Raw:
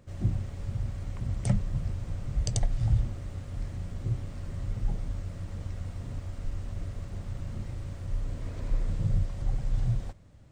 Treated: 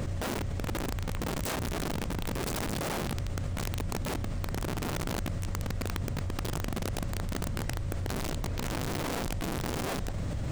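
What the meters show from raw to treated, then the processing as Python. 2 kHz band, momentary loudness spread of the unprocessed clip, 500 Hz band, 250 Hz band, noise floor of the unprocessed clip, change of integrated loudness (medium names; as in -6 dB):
+14.0 dB, 9 LU, +10.5 dB, +5.0 dB, -43 dBFS, 0.0 dB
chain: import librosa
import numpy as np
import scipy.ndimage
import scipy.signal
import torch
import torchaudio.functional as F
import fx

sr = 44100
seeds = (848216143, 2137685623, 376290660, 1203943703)

y = (np.mod(10.0 ** (28.0 / 20.0) * x + 1.0, 2.0) - 1.0) / 10.0 ** (28.0 / 20.0)
y = fx.env_flatten(y, sr, amount_pct=100)
y = y * librosa.db_to_amplitude(-2.5)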